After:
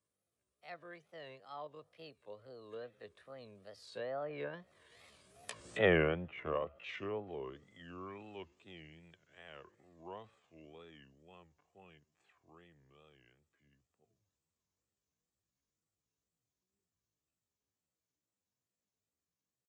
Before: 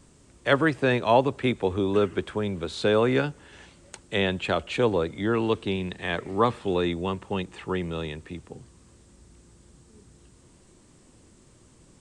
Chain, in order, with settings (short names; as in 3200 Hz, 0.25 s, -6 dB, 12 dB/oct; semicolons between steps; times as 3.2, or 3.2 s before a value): Doppler pass-by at 3.5, 50 m/s, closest 3 m; HPF 65 Hz 24 dB/oct; low shelf 200 Hz -10 dB; comb 1.7 ms, depth 41%; dynamic EQ 2600 Hz, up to +3 dB, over -57 dBFS, Q 1.3; tempo 0.61×; wow and flutter 150 cents; treble ducked by the level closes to 1300 Hz, closed at -42 dBFS; gain +6 dB